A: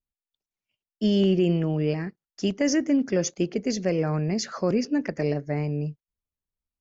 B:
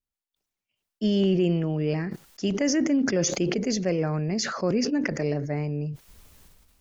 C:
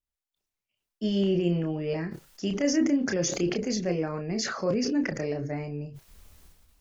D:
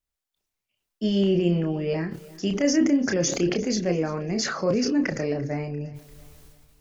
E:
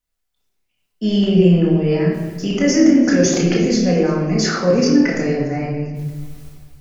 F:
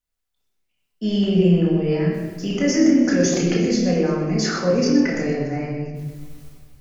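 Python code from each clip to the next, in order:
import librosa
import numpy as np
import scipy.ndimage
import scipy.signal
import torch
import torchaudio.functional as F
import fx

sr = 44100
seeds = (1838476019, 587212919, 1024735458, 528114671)

y1 = fx.sustainer(x, sr, db_per_s=37.0)
y1 = F.gain(torch.from_numpy(y1), -1.5).numpy()
y2 = fx.chorus_voices(y1, sr, voices=6, hz=0.47, base_ms=30, depth_ms=1.9, mix_pct=35)
y3 = fx.echo_feedback(y2, sr, ms=344, feedback_pct=41, wet_db=-21)
y3 = F.gain(torch.from_numpy(y3), 3.5).numpy()
y4 = fx.room_shoebox(y3, sr, seeds[0], volume_m3=520.0, walls='mixed', distance_m=1.9)
y4 = F.gain(torch.from_numpy(y4), 2.5).numpy()
y5 = y4 + 10.0 ** (-10.5 / 20.0) * np.pad(y4, (int(125 * sr / 1000.0), 0))[:len(y4)]
y5 = F.gain(torch.from_numpy(y5), -4.0).numpy()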